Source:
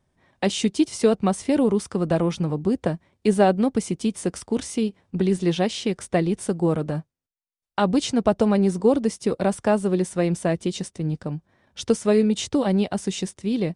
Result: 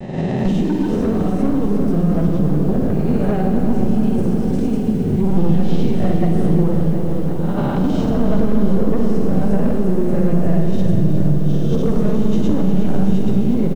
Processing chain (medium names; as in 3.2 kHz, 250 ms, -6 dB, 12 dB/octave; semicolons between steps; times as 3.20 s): reverse spectral sustain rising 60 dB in 1.02 s; flange 0.41 Hz, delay 3.4 ms, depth 5.1 ms, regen +82%; transient shaper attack +3 dB, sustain -2 dB; bass shelf 260 Hz +7 dB; feedback delay 431 ms, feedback 33%, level -15.5 dB; granulator 100 ms, grains 20 per s, pitch spread up and down by 0 st; in parallel at -11.5 dB: sine folder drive 12 dB, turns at -6 dBFS; on the sum: upward compressor, threshold -32 dBFS; on a send at -3 dB: reverberation RT60 1.7 s, pre-delay 42 ms; on the sum: compression 3:1, threshold -24 dBFS, peak gain reduction 12.5 dB; RIAA curve playback; bit-crushed delay 358 ms, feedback 80%, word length 7-bit, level -10.5 dB; trim -1 dB